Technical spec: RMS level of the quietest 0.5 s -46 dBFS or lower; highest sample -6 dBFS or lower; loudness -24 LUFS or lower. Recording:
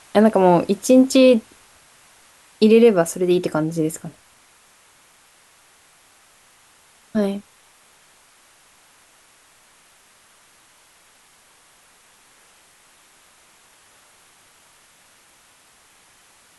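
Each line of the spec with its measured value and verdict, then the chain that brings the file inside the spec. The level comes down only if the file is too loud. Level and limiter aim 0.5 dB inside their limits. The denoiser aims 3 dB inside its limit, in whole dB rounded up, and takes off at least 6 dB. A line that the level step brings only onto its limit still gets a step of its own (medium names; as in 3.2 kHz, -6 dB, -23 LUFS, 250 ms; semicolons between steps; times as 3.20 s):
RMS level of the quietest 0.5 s -54 dBFS: pass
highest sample -3.5 dBFS: fail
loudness -17.0 LUFS: fail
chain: trim -7.5 dB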